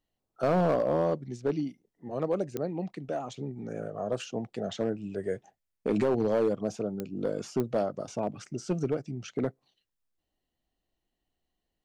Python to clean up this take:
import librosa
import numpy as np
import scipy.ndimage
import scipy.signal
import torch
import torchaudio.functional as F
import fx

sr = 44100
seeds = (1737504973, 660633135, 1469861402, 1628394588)

y = fx.fix_declip(x, sr, threshold_db=-20.0)
y = fx.fix_declick_ar(y, sr, threshold=10.0)